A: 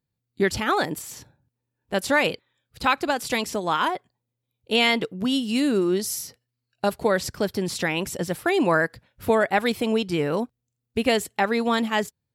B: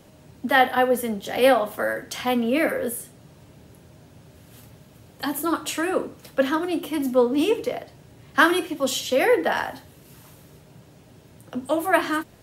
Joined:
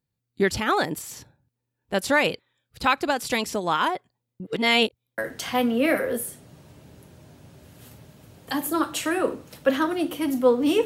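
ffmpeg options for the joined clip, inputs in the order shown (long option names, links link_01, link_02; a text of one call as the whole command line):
ffmpeg -i cue0.wav -i cue1.wav -filter_complex "[0:a]apad=whole_dur=10.85,atrim=end=10.85,asplit=2[link_01][link_02];[link_01]atrim=end=4.402[link_03];[link_02]atrim=start=4.398:end=5.182,asetpts=PTS-STARTPTS,areverse[link_04];[1:a]atrim=start=1.898:end=7.57[link_05];[link_03][link_04]acrossfade=duration=0.004:curve1=hsin:curve2=hsin[link_06];[link_06][link_05]acrossfade=duration=0.004:curve1=hsin:curve2=hsin" out.wav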